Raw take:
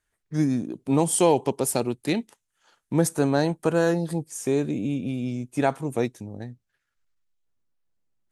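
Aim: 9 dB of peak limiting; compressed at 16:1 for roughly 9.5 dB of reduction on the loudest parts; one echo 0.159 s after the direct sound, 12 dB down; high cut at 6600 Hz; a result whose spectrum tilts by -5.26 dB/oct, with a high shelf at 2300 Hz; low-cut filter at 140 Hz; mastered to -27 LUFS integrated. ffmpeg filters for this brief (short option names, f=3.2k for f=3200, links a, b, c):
-af "highpass=140,lowpass=6.6k,highshelf=f=2.3k:g=4,acompressor=threshold=-24dB:ratio=16,alimiter=limit=-22.5dB:level=0:latency=1,aecho=1:1:159:0.251,volume=6dB"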